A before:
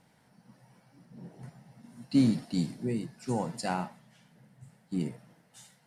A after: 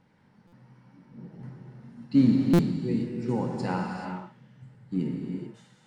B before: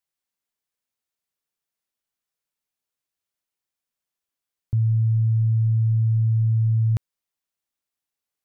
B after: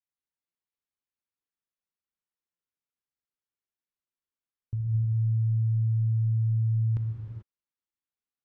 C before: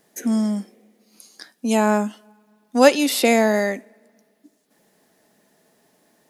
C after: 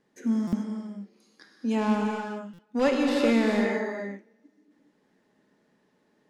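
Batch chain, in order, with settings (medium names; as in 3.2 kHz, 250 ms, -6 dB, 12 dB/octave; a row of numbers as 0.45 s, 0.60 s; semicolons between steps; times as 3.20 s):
peaking EQ 680 Hz -11.5 dB 0.26 oct; in parallel at -8.5 dB: integer overflow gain 10 dB; on the sum: tape spacing loss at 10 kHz 21 dB; gated-style reverb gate 460 ms flat, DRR 0 dB; buffer glitch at 0.47/2.53 s, samples 256, times 9; normalise loudness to -27 LUFS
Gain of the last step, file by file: 0.0 dB, -11.0 dB, -8.5 dB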